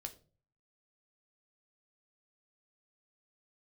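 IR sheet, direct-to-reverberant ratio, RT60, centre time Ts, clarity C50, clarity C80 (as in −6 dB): 5.0 dB, 0.40 s, 7 ms, 15.0 dB, 19.5 dB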